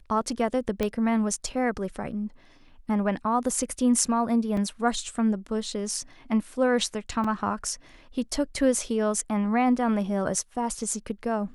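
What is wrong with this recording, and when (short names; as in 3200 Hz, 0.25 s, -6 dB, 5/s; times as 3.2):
0.83 pop -13 dBFS
4.57 gap 3.5 ms
7.24 gap 4.3 ms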